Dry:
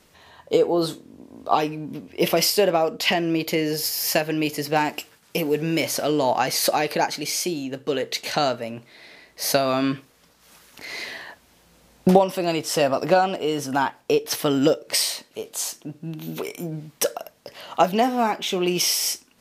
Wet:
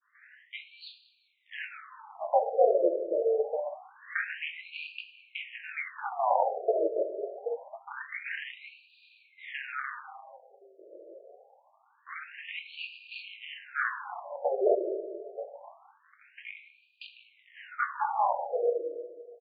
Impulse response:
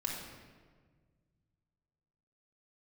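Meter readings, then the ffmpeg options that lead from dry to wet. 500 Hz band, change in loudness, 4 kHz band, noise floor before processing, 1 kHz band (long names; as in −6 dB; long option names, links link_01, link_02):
−7.5 dB, −9.5 dB, −20.5 dB, −58 dBFS, −8.5 dB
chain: -filter_complex "[0:a]flanger=delay=17.5:depth=6.1:speed=1.8,agate=range=-33dB:threshold=-56dB:ratio=3:detection=peak,highshelf=frequency=2700:width_type=q:width=1.5:gain=-8.5,aecho=1:1:189|378|567|756:0.106|0.053|0.0265|0.0132,asplit=2[link_01][link_02];[1:a]atrim=start_sample=2205,asetrate=48510,aresample=44100[link_03];[link_02][link_03]afir=irnorm=-1:irlink=0,volume=-2.5dB[link_04];[link_01][link_04]amix=inputs=2:normalize=0,adynamicequalizer=threshold=0.01:dfrequency=1100:dqfactor=3.8:tfrequency=1100:tqfactor=3.8:attack=5:release=100:ratio=0.375:range=2:mode=cutabove:tftype=bell,aeval=exprs='val(0)*sin(2*PI*120*n/s)':channel_layout=same,aeval=exprs='1*(cos(1*acos(clip(val(0)/1,-1,1)))-cos(1*PI/2))+0.0355*(cos(8*acos(clip(val(0)/1,-1,1)))-cos(8*PI/2))':channel_layout=same,afftfilt=real='re*between(b*sr/1024,460*pow(3400/460,0.5+0.5*sin(2*PI*0.25*pts/sr))/1.41,460*pow(3400/460,0.5+0.5*sin(2*PI*0.25*pts/sr))*1.41)':imag='im*between(b*sr/1024,460*pow(3400/460,0.5+0.5*sin(2*PI*0.25*pts/sr))/1.41,460*pow(3400/460,0.5+0.5*sin(2*PI*0.25*pts/sr))*1.41)':win_size=1024:overlap=0.75,volume=-1dB"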